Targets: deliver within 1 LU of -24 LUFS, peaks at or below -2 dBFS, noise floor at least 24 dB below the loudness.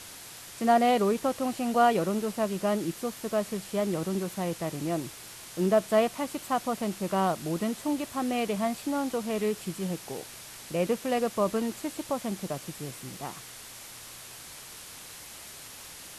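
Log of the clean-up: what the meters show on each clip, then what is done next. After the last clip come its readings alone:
noise floor -46 dBFS; noise floor target -54 dBFS; loudness -29.5 LUFS; peak level -11.0 dBFS; loudness target -24.0 LUFS
-> noise reduction 8 dB, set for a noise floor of -46 dBFS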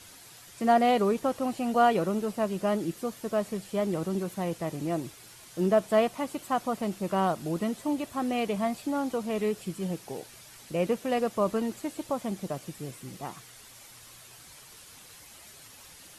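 noise floor -51 dBFS; noise floor target -53 dBFS
-> noise reduction 6 dB, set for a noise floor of -51 dBFS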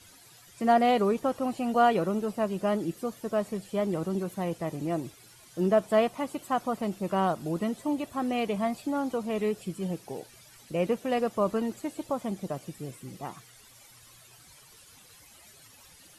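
noise floor -55 dBFS; loudness -29.0 LUFS; peak level -11.5 dBFS; loudness target -24.0 LUFS
-> trim +5 dB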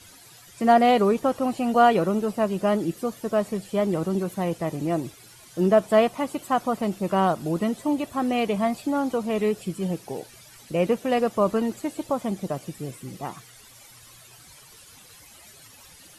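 loudness -24.0 LUFS; peak level -6.5 dBFS; noise floor -50 dBFS

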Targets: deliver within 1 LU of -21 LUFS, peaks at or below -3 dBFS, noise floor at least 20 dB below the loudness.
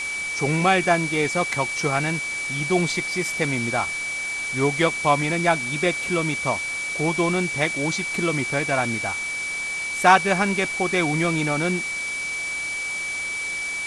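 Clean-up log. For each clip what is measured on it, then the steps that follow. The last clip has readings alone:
steady tone 2.3 kHz; tone level -26 dBFS; noise floor -29 dBFS; noise floor target -43 dBFS; loudness -22.5 LUFS; peak level -2.0 dBFS; loudness target -21.0 LUFS
-> band-stop 2.3 kHz, Q 30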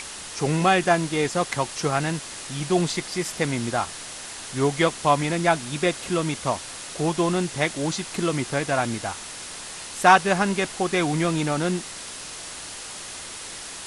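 steady tone not found; noise floor -37 dBFS; noise floor target -45 dBFS
-> noise reduction 8 dB, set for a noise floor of -37 dBFS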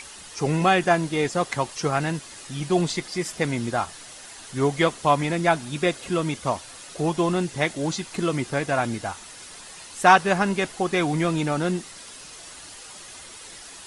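noise floor -43 dBFS; noise floor target -44 dBFS
-> noise reduction 6 dB, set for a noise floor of -43 dBFS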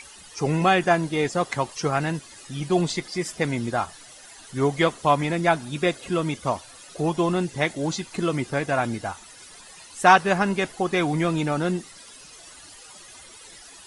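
noise floor -46 dBFS; loudness -24.0 LUFS; peak level -2.5 dBFS; loudness target -21.0 LUFS
-> trim +3 dB; peak limiter -3 dBFS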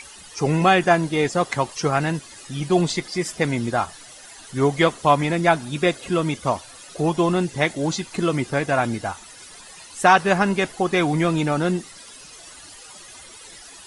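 loudness -21.5 LUFS; peak level -3.0 dBFS; noise floor -43 dBFS

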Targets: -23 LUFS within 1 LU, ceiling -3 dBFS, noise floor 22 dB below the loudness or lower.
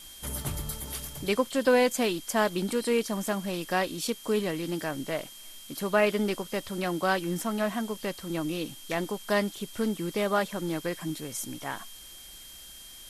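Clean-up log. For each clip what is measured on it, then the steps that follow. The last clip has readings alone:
steady tone 3.2 kHz; tone level -49 dBFS; noise floor -47 dBFS; noise floor target -52 dBFS; loudness -29.5 LUFS; peak level -11.0 dBFS; loudness target -23.0 LUFS
-> band-stop 3.2 kHz, Q 30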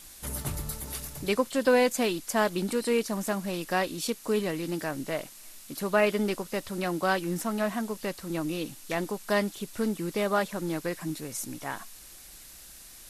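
steady tone not found; noise floor -49 dBFS; noise floor target -52 dBFS
-> noise print and reduce 6 dB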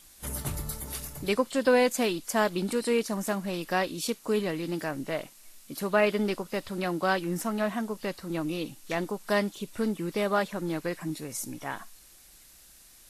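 noise floor -55 dBFS; loudness -29.5 LUFS; peak level -11.0 dBFS; loudness target -23.0 LUFS
-> trim +6.5 dB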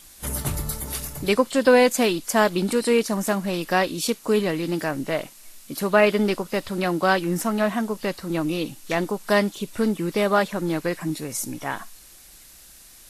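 loudness -23.0 LUFS; peak level -4.5 dBFS; noise floor -48 dBFS

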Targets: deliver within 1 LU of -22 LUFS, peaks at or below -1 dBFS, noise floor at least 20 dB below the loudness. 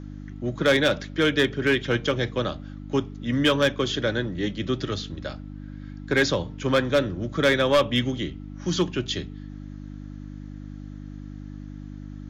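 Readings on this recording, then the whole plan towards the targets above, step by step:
clipped samples 0.5%; clipping level -13.5 dBFS; hum 50 Hz; highest harmonic 300 Hz; hum level -36 dBFS; loudness -24.5 LUFS; peak level -13.5 dBFS; loudness target -22.0 LUFS
-> clip repair -13.5 dBFS; de-hum 50 Hz, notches 6; trim +2.5 dB

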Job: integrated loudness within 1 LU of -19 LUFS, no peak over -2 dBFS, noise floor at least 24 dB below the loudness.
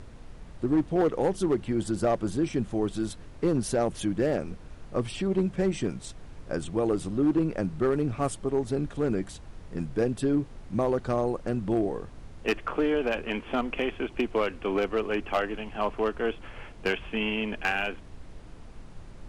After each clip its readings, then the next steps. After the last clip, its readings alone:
clipped samples 0.9%; clipping level -18.0 dBFS; noise floor -46 dBFS; noise floor target -53 dBFS; loudness -28.5 LUFS; peak level -18.0 dBFS; loudness target -19.0 LUFS
-> clip repair -18 dBFS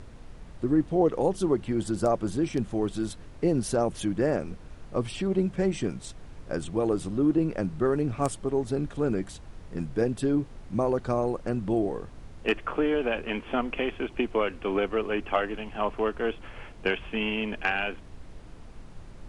clipped samples 0.0%; noise floor -46 dBFS; noise floor target -53 dBFS
-> noise print and reduce 7 dB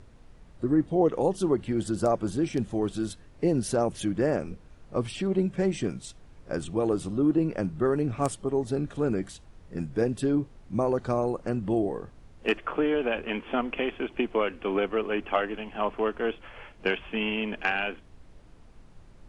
noise floor -52 dBFS; noise floor target -53 dBFS
-> noise print and reduce 6 dB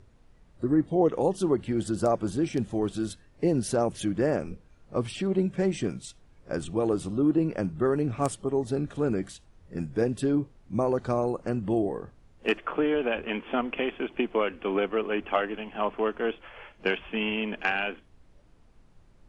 noise floor -58 dBFS; loudness -28.5 LUFS; peak level -9.0 dBFS; loudness target -19.0 LUFS
-> trim +9.5 dB; peak limiter -2 dBFS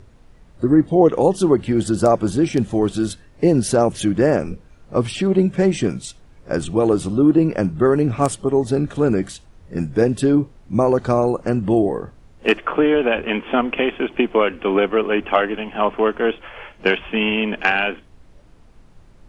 loudness -19.0 LUFS; peak level -2.0 dBFS; noise floor -48 dBFS

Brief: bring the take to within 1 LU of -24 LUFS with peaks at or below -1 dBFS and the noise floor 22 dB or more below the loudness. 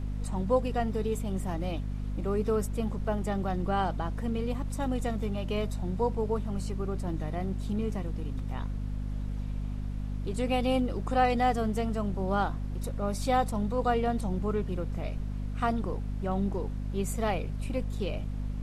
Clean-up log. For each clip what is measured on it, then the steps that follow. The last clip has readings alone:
hum 50 Hz; highest harmonic 250 Hz; hum level -31 dBFS; noise floor -35 dBFS; noise floor target -54 dBFS; loudness -31.5 LUFS; peak level -13.5 dBFS; loudness target -24.0 LUFS
-> hum notches 50/100/150/200/250 Hz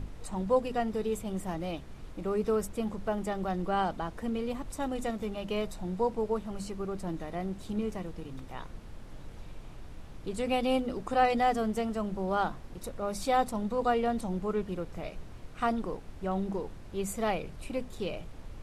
hum not found; noise floor -46 dBFS; noise floor target -55 dBFS
-> noise print and reduce 9 dB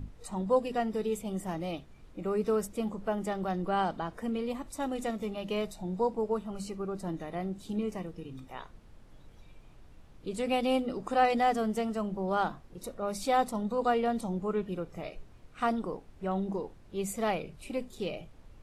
noise floor -55 dBFS; loudness -32.5 LUFS; peak level -14.0 dBFS; loudness target -24.0 LUFS
-> trim +8.5 dB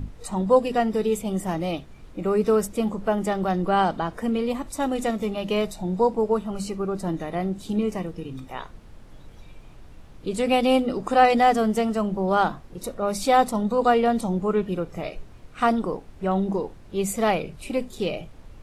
loudness -24.0 LUFS; peak level -5.5 dBFS; noise floor -46 dBFS

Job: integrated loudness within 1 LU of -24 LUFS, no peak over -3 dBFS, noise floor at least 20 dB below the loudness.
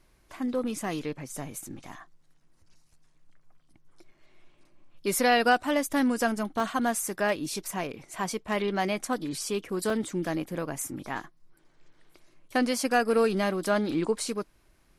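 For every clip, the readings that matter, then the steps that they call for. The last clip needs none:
dropouts 2; longest dropout 2.4 ms; loudness -28.5 LUFS; peak level -11.0 dBFS; loudness target -24.0 LUFS
-> interpolate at 6.60/9.90 s, 2.4 ms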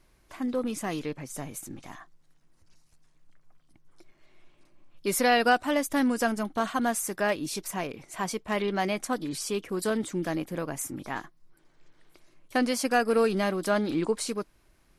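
dropouts 0; loudness -28.5 LUFS; peak level -11.0 dBFS; loudness target -24.0 LUFS
-> trim +4.5 dB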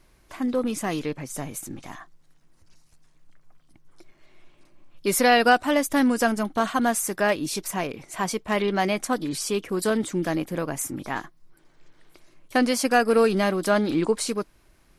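loudness -24.0 LUFS; peak level -6.5 dBFS; noise floor -59 dBFS

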